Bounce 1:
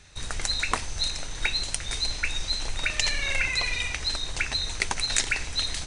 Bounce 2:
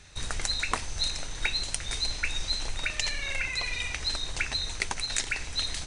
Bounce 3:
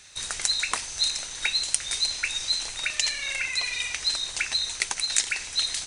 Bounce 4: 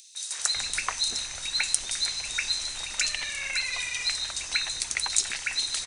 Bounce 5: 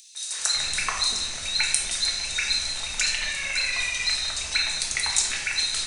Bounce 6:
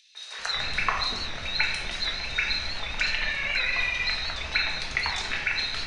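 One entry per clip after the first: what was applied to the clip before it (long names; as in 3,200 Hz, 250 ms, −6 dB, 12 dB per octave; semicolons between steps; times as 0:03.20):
speech leveller within 4 dB 0.5 s; level −3 dB
spectral tilt +3 dB per octave; level −1 dB
upward compression, threshold −48 dBFS; three-band delay without the direct sound highs, mids, lows 150/390 ms, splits 450/3,300 Hz
rectangular room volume 430 cubic metres, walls mixed, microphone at 1.5 metres
high-frequency loss of the air 310 metres; wow of a warped record 78 rpm, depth 100 cents; level +5 dB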